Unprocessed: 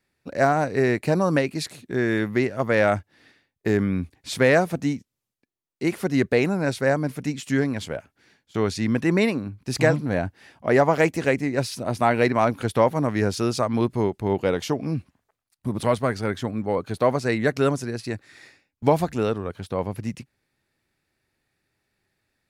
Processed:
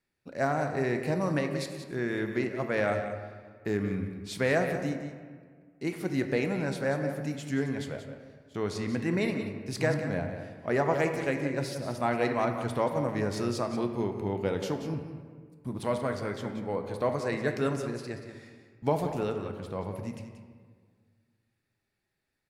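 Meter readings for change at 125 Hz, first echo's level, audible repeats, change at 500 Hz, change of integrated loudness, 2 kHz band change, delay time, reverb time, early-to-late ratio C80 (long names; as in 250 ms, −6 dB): −7.0 dB, −10.5 dB, 1, −7.5 dB, −7.5 dB, −7.5 dB, 181 ms, 1.7 s, 7.0 dB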